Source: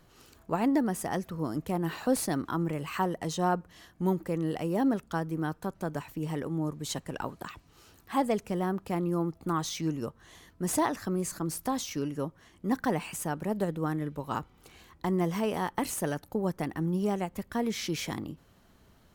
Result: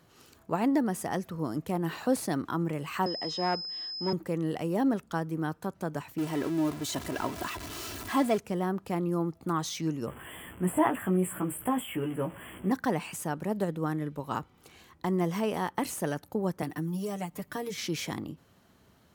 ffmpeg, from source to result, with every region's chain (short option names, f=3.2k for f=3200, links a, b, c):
-filter_complex "[0:a]asettb=1/sr,asplit=3[a][b][c];[a]atrim=end=3.064[d];[b]atrim=start=3.06:end=4.13,asetpts=PTS-STARTPTS,afade=t=in:d=0.004:c=qsin,afade=t=out:st=1.066:d=0.004:c=qsin,acrossover=split=200 5500:gain=0.0794 1 0.0794[e][f][g];[e][f][g]amix=inputs=3:normalize=0,aeval=exprs='clip(val(0),-1,0.0398)':c=same,aeval=exprs='val(0)+0.0178*sin(2*PI*5100*n/s)':c=same[h];[c]atrim=start=4.126[i];[d][h]acrossfade=d=0.004:c1=hsin:c2=qsin[j];[j][i]acrossfade=d=0.004:c1=qsin:c2=hsin,asettb=1/sr,asplit=3[k][l][m];[k]atrim=end=6.184[n];[l]atrim=start=6.18:end=8.38,asetpts=PTS-STARTPTS,afade=t=in:d=0.004:c=qsin,afade=t=out:st=2.196:d=0.004:c=qsin,aeval=exprs='val(0)+0.5*0.0188*sgn(val(0))':c=same,aecho=1:1:3:0.54,atrim=end_sample=97020[o];[m]atrim=start=8.376[p];[n][o]acrossfade=d=0.004:c1=hsin:c2=qsin[q];[q][p]acrossfade=d=0.004:c1=qsin:c2=hsin,asettb=1/sr,asplit=3[r][s][t];[r]atrim=end=10.074[u];[s]atrim=start=10.07:end=12.71,asetpts=PTS-STARTPTS,afade=t=in:d=0.004:c=qsin,afade=t=out:st=2.636:d=0.004:c=qsin,aeval=exprs='val(0)+0.5*0.00794*sgn(val(0))':c=same,asuperstop=centerf=5100:order=20:qfactor=1.2,asplit=2[v][w];[w]adelay=16,volume=-4dB[x];[v][x]amix=inputs=2:normalize=0,atrim=end_sample=116424[y];[t]atrim=start=12.706[z];[u][y]acrossfade=d=0.004:c1=hsin:c2=qsin[aa];[aa][z]acrossfade=d=0.004:c1=qsin:c2=hsin,asettb=1/sr,asplit=3[ab][ac][ad];[ab]atrim=end=16.624[ae];[ac]atrim=start=16.62:end=17.78,asetpts=PTS-STARTPTS,afade=t=in:d=0.004:c=qsin,afade=t=out:st=1.156:d=0.004:c=qsin,highshelf=f=10k:g=6,aecho=1:1:6.7:0.93,atrim=end_sample=51156,acrossover=split=170|3200[af][ag][ah];[af]acompressor=threshold=-40dB:ratio=4[ai];[ag]acompressor=threshold=-34dB:ratio=4[aj];[ah]acompressor=threshold=-46dB:ratio=4[ak];[ai][aj][ak]amix=inputs=3:normalize=0[al];[ad]atrim=start=17.776[am];[ae][al]acrossfade=d=0.004:c1=hsin:c2=qsin[an];[an][am]acrossfade=d=0.004:c1=qsin:c2=hsin,deesser=0.6,highpass=79"